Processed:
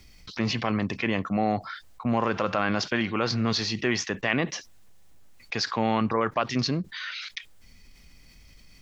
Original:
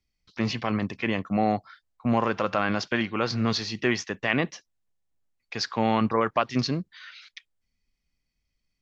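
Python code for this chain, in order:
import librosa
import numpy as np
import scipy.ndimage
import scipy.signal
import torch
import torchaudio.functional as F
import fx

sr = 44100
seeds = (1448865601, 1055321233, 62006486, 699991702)

y = fx.env_flatten(x, sr, amount_pct=50)
y = y * 10.0 ** (-3.0 / 20.0)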